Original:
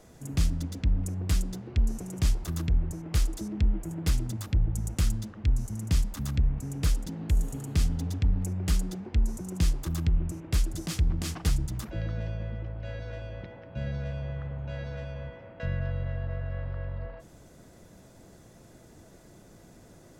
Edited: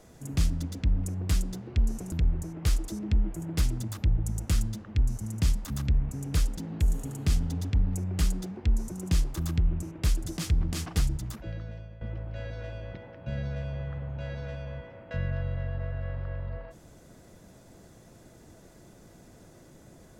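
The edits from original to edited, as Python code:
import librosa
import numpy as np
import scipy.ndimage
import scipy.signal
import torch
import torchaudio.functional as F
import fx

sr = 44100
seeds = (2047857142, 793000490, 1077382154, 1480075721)

y = fx.edit(x, sr, fx.cut(start_s=2.12, length_s=0.49),
    fx.fade_out_to(start_s=11.52, length_s=0.98, floor_db=-14.5), tone=tone)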